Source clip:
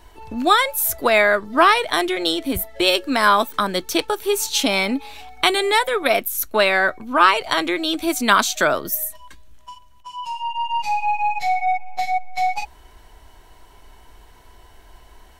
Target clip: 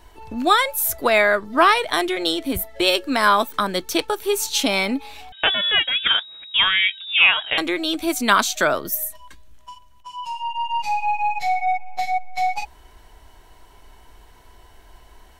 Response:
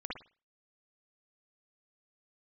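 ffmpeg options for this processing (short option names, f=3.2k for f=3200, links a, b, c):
-filter_complex "[0:a]asettb=1/sr,asplit=3[a][b][c];[a]atrim=end=5.324[d];[b]atrim=start=5.32:end=7.58,asetpts=PTS-STARTPTS,afade=t=in:d=0.004:c=qsin,afade=t=out:st=2.256:d=0.004:c=qsin,lowpass=f=3.2k:t=q:w=0.5098,lowpass=f=3.2k:t=q:w=0.6013,lowpass=f=3.2k:t=q:w=0.9,lowpass=f=3.2k:t=q:w=2.563,afreqshift=-3800[e];[c]atrim=start=7.576[f];[d][e]acrossfade=d=0.004:c1=hsin:c2=qsin[g];[g][f]acrossfade=d=0.004:c1=qsin:c2=hsin,volume=-1dB"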